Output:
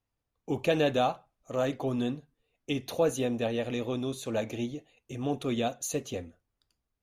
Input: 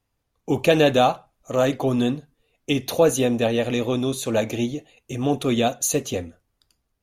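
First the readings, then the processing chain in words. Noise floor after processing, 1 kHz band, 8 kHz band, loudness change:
-84 dBFS, -9.0 dB, -12.0 dB, -9.0 dB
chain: high shelf 7100 Hz -6 dB; gain -9 dB

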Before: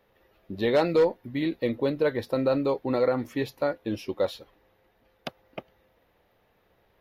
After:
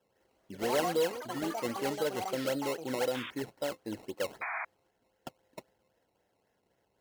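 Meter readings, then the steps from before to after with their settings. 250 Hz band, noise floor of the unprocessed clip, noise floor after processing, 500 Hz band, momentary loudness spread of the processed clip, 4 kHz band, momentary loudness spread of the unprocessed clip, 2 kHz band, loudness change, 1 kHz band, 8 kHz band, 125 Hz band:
-8.5 dB, -67 dBFS, -77 dBFS, -8.0 dB, 21 LU, -1.0 dB, 19 LU, -2.0 dB, -7.5 dB, -2.0 dB, n/a, -10.5 dB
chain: decimation with a swept rate 19×, swing 100% 3.8 Hz; notch comb 1200 Hz; painted sound noise, 4.41–4.65, 630–2500 Hz -28 dBFS; echoes that change speed 0.202 s, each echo +7 st, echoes 3, each echo -6 dB; gain -8 dB

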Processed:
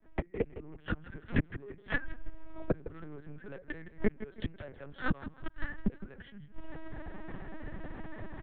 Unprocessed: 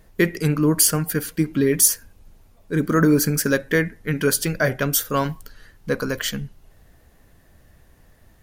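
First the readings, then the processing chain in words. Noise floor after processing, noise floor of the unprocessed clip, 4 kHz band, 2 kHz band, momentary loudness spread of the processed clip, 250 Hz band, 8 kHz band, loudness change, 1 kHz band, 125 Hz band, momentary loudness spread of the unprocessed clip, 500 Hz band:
-57 dBFS, -55 dBFS, -24.5 dB, -14.0 dB, 13 LU, -16.5 dB, under -40 dB, -19.5 dB, -16.0 dB, -16.0 dB, 12 LU, -17.0 dB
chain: opening faded in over 1.10 s; LPF 1900 Hz 12 dB/oct; gate -42 dBFS, range -11 dB; comb 5.2 ms, depth 40%; in parallel at -3 dB: compressor 20:1, threshold -30 dBFS, peak gain reduction 19.5 dB; on the sum: soft clip -15.5 dBFS, distortion -13 dB; flipped gate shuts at -24 dBFS, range -42 dB; on a send: feedback echo 0.161 s, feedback 27%, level -15 dB; on the sum: LPC vocoder at 8 kHz pitch kept; three-band squash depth 40%; gain +14.5 dB

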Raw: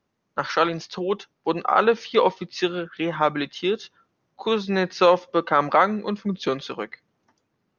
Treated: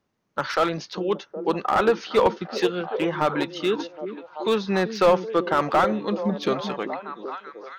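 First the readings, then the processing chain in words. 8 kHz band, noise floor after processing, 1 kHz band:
n/a, -63 dBFS, -1.5 dB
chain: delay with a stepping band-pass 0.384 s, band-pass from 260 Hz, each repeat 0.7 oct, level -6.5 dB; slew limiter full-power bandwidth 180 Hz

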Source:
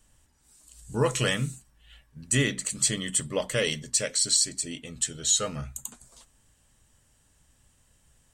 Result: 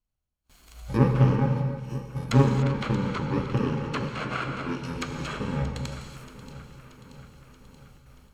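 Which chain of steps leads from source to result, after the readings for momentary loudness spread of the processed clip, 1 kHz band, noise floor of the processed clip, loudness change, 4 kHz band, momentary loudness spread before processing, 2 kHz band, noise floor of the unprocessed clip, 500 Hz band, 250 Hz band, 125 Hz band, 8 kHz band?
19 LU, +7.5 dB, -80 dBFS, -0.5 dB, -11.5 dB, 13 LU, -2.5 dB, -65 dBFS, +0.5 dB, +7.5 dB, +9.5 dB, -23.0 dB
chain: FFT order left unsorted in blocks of 64 samples; treble ducked by the level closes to 1400 Hz, closed at -25.5 dBFS; echo with dull and thin repeats by turns 0.315 s, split 2500 Hz, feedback 78%, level -12 dB; gate with hold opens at -50 dBFS; high shelf 2200 Hz -11 dB; spectral noise reduction 8 dB; non-linear reverb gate 0.32 s flat, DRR 4 dB; Doppler distortion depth 0.2 ms; gain +8.5 dB

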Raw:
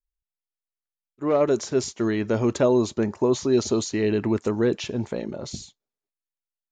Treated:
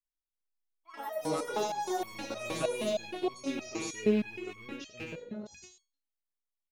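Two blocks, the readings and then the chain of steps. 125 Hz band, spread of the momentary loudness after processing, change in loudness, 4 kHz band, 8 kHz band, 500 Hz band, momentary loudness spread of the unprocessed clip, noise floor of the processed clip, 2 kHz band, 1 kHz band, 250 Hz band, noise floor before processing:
-16.0 dB, 14 LU, -11.0 dB, -6.5 dB, -9.0 dB, -11.5 dB, 11 LU, under -85 dBFS, -5.0 dB, -3.0 dB, -12.0 dB, under -85 dBFS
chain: rattling part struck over -27 dBFS, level -18 dBFS; echoes that change speed 0.155 s, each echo +7 st, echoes 2; on a send: echo 93 ms -5 dB; on the sum: stepped resonator 6.4 Hz 160–1100 Hz; gain +1 dB

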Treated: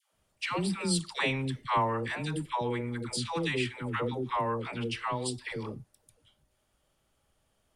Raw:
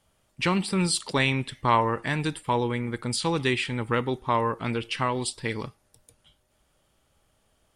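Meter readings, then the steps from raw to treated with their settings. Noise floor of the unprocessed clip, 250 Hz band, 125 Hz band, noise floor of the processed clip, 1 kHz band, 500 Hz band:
-69 dBFS, -5.5 dB, -5.5 dB, -75 dBFS, -5.5 dB, -5.5 dB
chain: dispersion lows, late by 0.137 s, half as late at 610 Hz; gain -5.5 dB

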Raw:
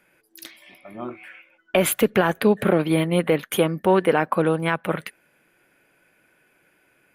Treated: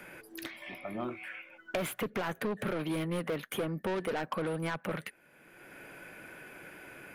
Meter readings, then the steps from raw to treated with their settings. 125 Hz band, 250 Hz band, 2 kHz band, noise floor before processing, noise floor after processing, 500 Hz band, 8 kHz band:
-12.5 dB, -13.5 dB, -11.0 dB, -64 dBFS, -62 dBFS, -14.5 dB, -15.5 dB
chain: soft clip -21 dBFS, distortion -6 dB; three-band squash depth 70%; gain -7.5 dB

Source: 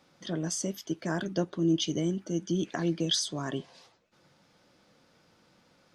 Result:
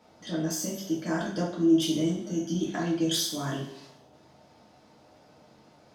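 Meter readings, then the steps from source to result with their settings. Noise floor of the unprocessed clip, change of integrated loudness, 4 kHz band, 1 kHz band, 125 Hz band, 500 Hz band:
-66 dBFS, +2.5 dB, 0.0 dB, +3.0 dB, 0.0 dB, +2.0 dB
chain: self-modulated delay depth 0.053 ms; band noise 77–840 Hz -61 dBFS; two-slope reverb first 0.53 s, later 1.6 s, from -19 dB, DRR -5 dB; gain -4 dB

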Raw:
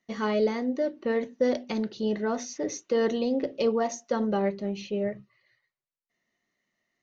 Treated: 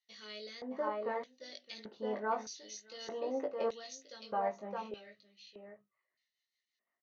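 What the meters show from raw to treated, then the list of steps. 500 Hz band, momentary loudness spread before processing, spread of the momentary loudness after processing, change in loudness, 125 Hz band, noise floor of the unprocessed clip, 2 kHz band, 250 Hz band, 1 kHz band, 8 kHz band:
-12.0 dB, 6 LU, 18 LU, -11.5 dB, under -15 dB, under -85 dBFS, -9.5 dB, -18.5 dB, -4.0 dB, n/a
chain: doubler 19 ms -4.5 dB; echo 0.616 s -8 dB; LFO band-pass square 0.81 Hz 970–4100 Hz; rotary speaker horn 0.8 Hz, later 6 Hz, at 5.41; gain +2 dB

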